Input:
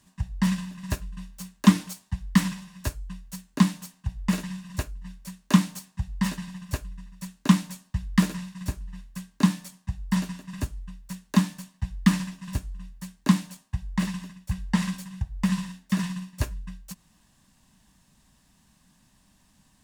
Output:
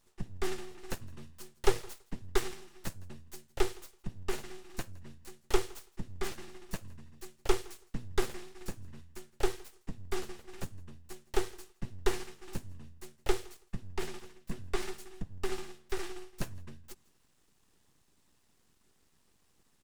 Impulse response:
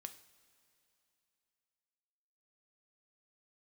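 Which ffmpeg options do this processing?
-af "aecho=1:1:164|328:0.0631|0.0101,aeval=exprs='abs(val(0))':c=same,volume=-6.5dB"

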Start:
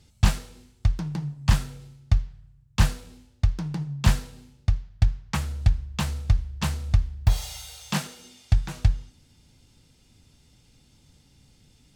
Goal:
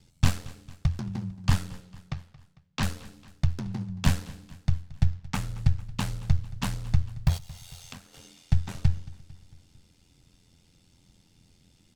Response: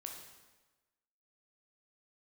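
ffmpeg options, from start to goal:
-filter_complex "[0:a]aeval=exprs='val(0)*sin(2*PI*43*n/s)':c=same,asettb=1/sr,asplit=3[a][b][c];[a]atrim=end=1.804[d];[b]atrim=start=1.8:end=2.83,asetpts=PTS-STARTPTS,afade=t=in:d=0.004:c=qsin,afade=t=out:st=1.026:d=0.004:c=qsin,acrossover=split=180 6600:gain=0.158 1 0.0891[e][f][g];[e][f][g]amix=inputs=3:normalize=0[h];[c]atrim=start=2.826[i];[d][h]acrossfade=d=0.004:c1=hsin:c2=qsin[j];[j][i]acrossfade=d=0.004:c1=qsin:c2=hsin,asplit=3[k][l][m];[k]afade=t=out:st=7.37:d=0.02[n];[l]acompressor=threshold=-42dB:ratio=12,afade=t=in:st=7.37:d=0.02,afade=t=out:st=8.13:d=0.02[o];[m]afade=t=in:st=8.13:d=0.02[p];[n][o][p]amix=inputs=3:normalize=0,asplit=2[q][r];[r]aecho=0:1:225|450|675|900:0.1|0.056|0.0314|0.0176[s];[q][s]amix=inputs=2:normalize=0"

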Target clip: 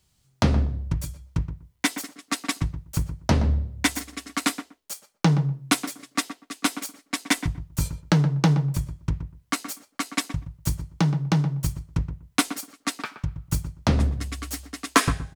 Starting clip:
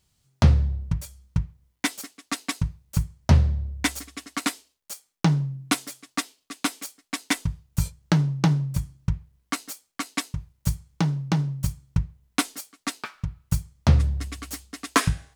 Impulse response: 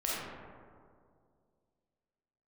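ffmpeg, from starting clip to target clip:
-filter_complex "[0:a]acrossover=split=180[a][b];[a]asoftclip=type=hard:threshold=-22.5dB[c];[c][b]amix=inputs=2:normalize=0,asplit=2[d][e];[e]adelay=122,lowpass=f=1.4k:p=1,volume=-9.5dB,asplit=2[f][g];[g]adelay=122,lowpass=f=1.4k:p=1,volume=0.17[h];[d][f][h]amix=inputs=3:normalize=0,volume=2dB"

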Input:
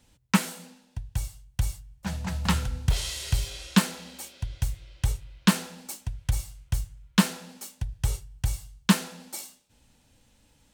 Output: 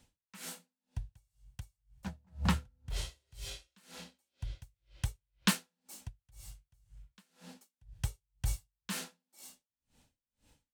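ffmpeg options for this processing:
-filter_complex "[0:a]asettb=1/sr,asplit=3[a][b][c];[a]atrim=end=2.074[d];[b]atrim=start=2.07:end=3.32,asetpts=PTS-STARTPTS,afade=t=in:d=0.004:c=qsin,afade=t=out:st=1.246:d=0.004:c=qsin,tiltshelf=f=1.4k:g=6.5[e];[c]atrim=start=3.316[f];[d][e]acrossfade=d=0.004:c1=hsin:c2=qsin[g];[g][f]acrossfade=d=0.004:c1=qsin:c2=hsin,acrossover=split=1400[h][i];[h]alimiter=limit=-16dB:level=0:latency=1:release=344[j];[j][i]amix=inputs=2:normalize=0,aeval=exprs='val(0)*pow(10,-40*(0.5-0.5*cos(2*PI*2*n/s))/20)':c=same,volume=-3dB"

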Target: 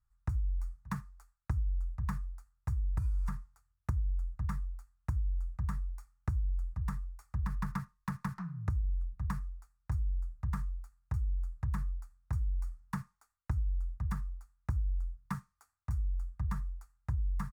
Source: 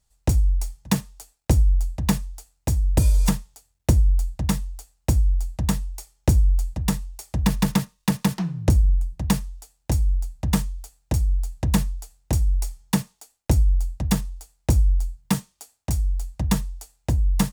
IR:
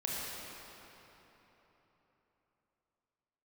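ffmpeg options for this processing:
-af "firequalizer=gain_entry='entry(100,0);entry(280,-19);entry(560,-21);entry(1200,5);entry(3000,-24);entry(4400,-19)':delay=0.05:min_phase=1,acompressor=threshold=-23dB:ratio=6,volume=-6.5dB"

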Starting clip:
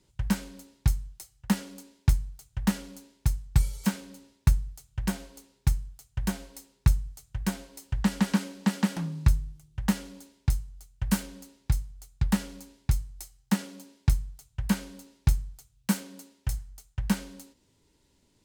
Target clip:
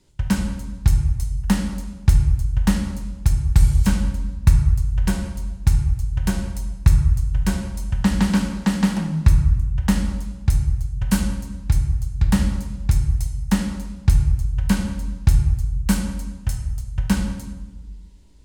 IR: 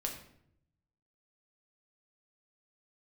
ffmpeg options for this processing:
-filter_complex "[0:a]asplit=2[a][b];[1:a]atrim=start_sample=2205,asetrate=23373,aresample=44100,lowshelf=f=69:g=9.5[c];[b][c]afir=irnorm=-1:irlink=0,volume=0.5dB[d];[a][d]amix=inputs=2:normalize=0,volume=-2.5dB"

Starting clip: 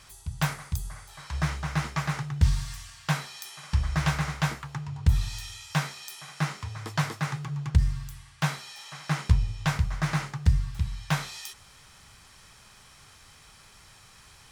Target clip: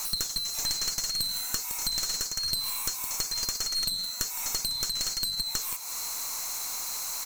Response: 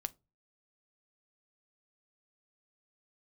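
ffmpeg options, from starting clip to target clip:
-filter_complex "[0:a]afftfilt=real='real(if(lt(b,920),b+92*(1-2*mod(floor(b/92),2)),b),0)':imag='imag(if(lt(b,920),b+92*(1-2*mod(floor(b/92),2)),b),0)':win_size=2048:overlap=0.75,aeval=exprs='0.398*(cos(1*acos(clip(val(0)/0.398,-1,1)))-cos(1*PI/2))+0.158*(cos(4*acos(clip(val(0)/0.398,-1,1)))-cos(4*PI/2))+0.158*(cos(5*acos(clip(val(0)/0.398,-1,1)))-cos(5*PI/2))+0.01*(cos(7*acos(clip(val(0)/0.398,-1,1)))-cos(7*PI/2))':c=same,acrossover=split=210|630[a][b][c];[a]acompressor=threshold=-34dB:ratio=4[d];[b]acompressor=threshold=-46dB:ratio=4[e];[c]acompressor=threshold=-19dB:ratio=4[f];[d][e][f]amix=inputs=3:normalize=0,acrossover=split=280[g][h];[h]aexciter=amount=8.1:drive=6.7:freq=2.4k[i];[g][i]amix=inputs=2:normalize=0,asetrate=88200,aresample=44100,highshelf=f=8.4k:g=-6.5,acompressor=threshold=-24dB:ratio=8,equalizer=f=1.2k:w=0.5:g=15,asplit=2[j][k];[k]aecho=0:1:163:0.15[l];[j][l]amix=inputs=2:normalize=0,flanger=delay=7:depth=4.2:regen=-88:speed=1.1:shape=sinusoidal,aeval=exprs='clip(val(0),-1,0.0282)':c=same"

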